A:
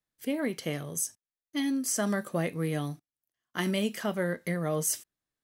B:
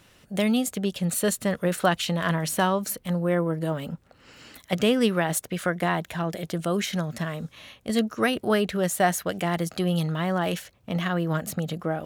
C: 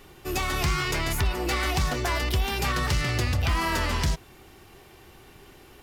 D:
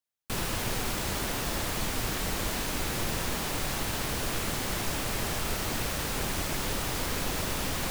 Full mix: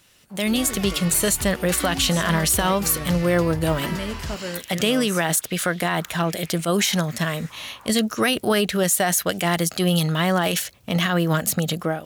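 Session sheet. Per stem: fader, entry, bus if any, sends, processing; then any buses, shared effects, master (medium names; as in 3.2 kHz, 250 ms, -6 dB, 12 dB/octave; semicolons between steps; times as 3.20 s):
-13.0 dB, 0.25 s, bus A, no send, none
-6.0 dB, 0.00 s, bus A, no send, peak limiter -16 dBFS, peak gain reduction 8 dB; treble shelf 2.5 kHz +11 dB
-6.5 dB, 0.20 s, no bus, no send, crossover distortion -46 dBFS
-3.5 dB, 0.00 s, bus A, no send, step-sequenced band-pass 2.4 Hz 860–3500 Hz; auto duck -11 dB, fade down 0.45 s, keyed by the second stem
bus A: 0.0 dB, level rider gain up to 11.5 dB; peak limiter -10 dBFS, peak gain reduction 7.5 dB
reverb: none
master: none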